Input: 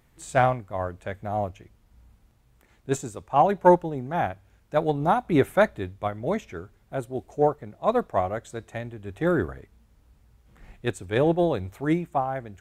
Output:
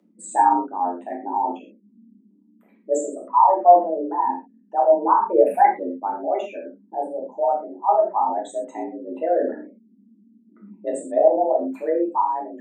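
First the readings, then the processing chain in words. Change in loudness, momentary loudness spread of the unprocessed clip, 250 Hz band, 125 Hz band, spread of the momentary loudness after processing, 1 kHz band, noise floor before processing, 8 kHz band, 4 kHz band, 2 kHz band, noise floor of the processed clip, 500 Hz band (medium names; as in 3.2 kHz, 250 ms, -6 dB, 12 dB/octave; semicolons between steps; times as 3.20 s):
+5.0 dB, 13 LU, -1.5 dB, under -25 dB, 15 LU, +8.0 dB, -62 dBFS, no reading, under -10 dB, -6.5 dB, -58 dBFS, +4.5 dB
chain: resonances exaggerated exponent 3; gated-style reverb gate 150 ms falling, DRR -4 dB; frequency shift +170 Hz; trim -1 dB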